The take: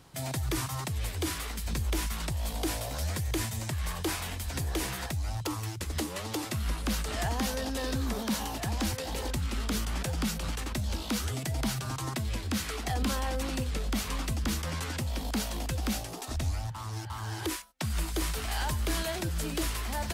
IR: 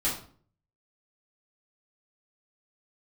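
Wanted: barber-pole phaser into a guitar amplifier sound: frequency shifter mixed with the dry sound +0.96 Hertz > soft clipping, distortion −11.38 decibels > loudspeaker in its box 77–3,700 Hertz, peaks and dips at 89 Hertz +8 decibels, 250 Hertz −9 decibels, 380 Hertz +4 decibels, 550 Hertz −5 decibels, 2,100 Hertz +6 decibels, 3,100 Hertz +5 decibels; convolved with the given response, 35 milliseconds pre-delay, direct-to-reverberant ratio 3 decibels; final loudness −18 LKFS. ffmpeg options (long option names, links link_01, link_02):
-filter_complex "[0:a]asplit=2[link_01][link_02];[1:a]atrim=start_sample=2205,adelay=35[link_03];[link_02][link_03]afir=irnorm=-1:irlink=0,volume=-11dB[link_04];[link_01][link_04]amix=inputs=2:normalize=0,asplit=2[link_05][link_06];[link_06]afreqshift=0.96[link_07];[link_05][link_07]amix=inputs=2:normalize=1,asoftclip=threshold=-30dB,highpass=77,equalizer=frequency=89:width_type=q:width=4:gain=8,equalizer=frequency=250:width_type=q:width=4:gain=-9,equalizer=frequency=380:width_type=q:width=4:gain=4,equalizer=frequency=550:width_type=q:width=4:gain=-5,equalizer=frequency=2100:width_type=q:width=4:gain=6,equalizer=frequency=3100:width_type=q:width=4:gain=5,lowpass=frequency=3700:width=0.5412,lowpass=frequency=3700:width=1.3066,volume=19dB"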